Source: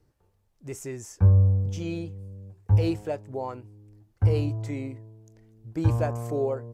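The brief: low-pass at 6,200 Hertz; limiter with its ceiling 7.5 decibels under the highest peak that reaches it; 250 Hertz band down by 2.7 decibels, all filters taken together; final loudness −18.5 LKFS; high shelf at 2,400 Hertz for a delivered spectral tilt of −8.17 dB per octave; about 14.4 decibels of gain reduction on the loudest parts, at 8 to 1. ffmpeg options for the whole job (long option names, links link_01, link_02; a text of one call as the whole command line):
ffmpeg -i in.wav -af "lowpass=6200,equalizer=frequency=250:width_type=o:gain=-4,highshelf=frequency=2400:gain=-4,acompressor=threshold=-30dB:ratio=8,volume=20dB,alimiter=limit=-9dB:level=0:latency=1" out.wav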